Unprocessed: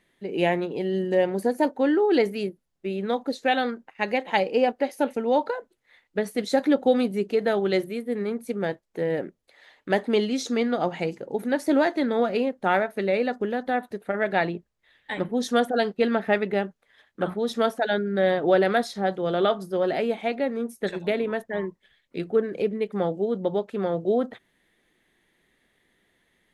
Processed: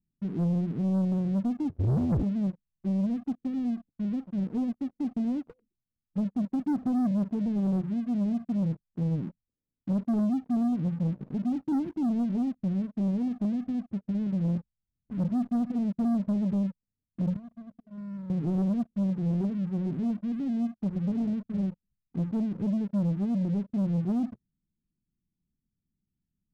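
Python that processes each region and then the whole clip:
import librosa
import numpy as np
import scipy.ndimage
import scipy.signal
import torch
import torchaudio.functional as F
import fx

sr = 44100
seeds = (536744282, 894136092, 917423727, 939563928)

y = fx.chain(x, sr, fx.crossing_spikes(level_db=-21.5),
    fx.ring_mod(carrier_hz=170.0),
    fx.doppler_dist(depth_ms=0.59), at=(1.69, 2.23))
y = fx.chain(y, sr, fx.tone_stack(knobs='6-0-2'),
    fx.env_flatten(amount_pct=50), at=(17.36, 18.3))
y = scipy.signal.sosfilt(scipy.signal.cheby2(4, 80, 1200.0, 'lowpass', fs=sr, output='sos'), y)
y = fx.leveller(y, sr, passes=3)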